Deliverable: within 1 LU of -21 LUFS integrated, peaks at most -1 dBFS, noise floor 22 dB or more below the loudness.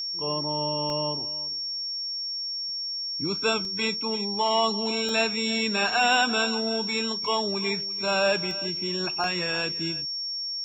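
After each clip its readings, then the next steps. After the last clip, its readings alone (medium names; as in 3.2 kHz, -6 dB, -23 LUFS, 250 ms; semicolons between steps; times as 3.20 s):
dropouts 5; longest dropout 1.4 ms; steady tone 5.5 kHz; tone level -29 dBFS; loudness -25.5 LUFS; peak level -8.5 dBFS; loudness target -21.0 LUFS
-> interpolate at 0.90/3.65/5.09/8.51/9.24 s, 1.4 ms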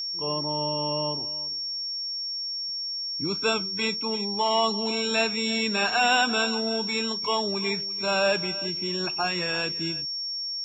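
dropouts 0; steady tone 5.5 kHz; tone level -29 dBFS
-> band-stop 5.5 kHz, Q 30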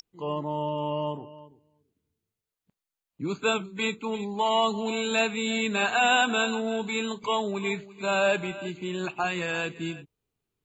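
steady tone not found; loudness -27.5 LUFS; peak level -9.0 dBFS; loudness target -21.0 LUFS
-> trim +6.5 dB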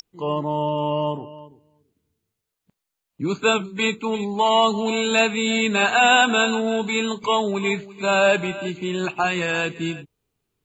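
loudness -21.0 LUFS; peak level -2.5 dBFS; noise floor -83 dBFS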